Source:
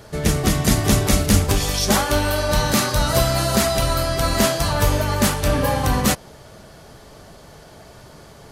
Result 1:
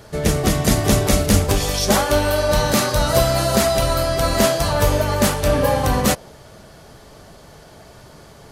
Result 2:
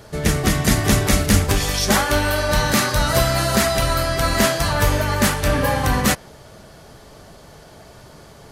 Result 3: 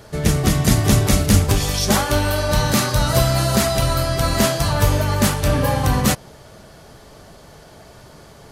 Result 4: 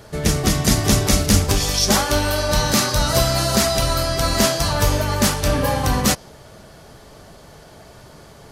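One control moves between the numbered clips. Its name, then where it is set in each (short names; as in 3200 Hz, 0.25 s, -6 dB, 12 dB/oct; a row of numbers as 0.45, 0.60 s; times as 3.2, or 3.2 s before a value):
dynamic EQ, frequency: 550, 1800, 120, 5400 Hz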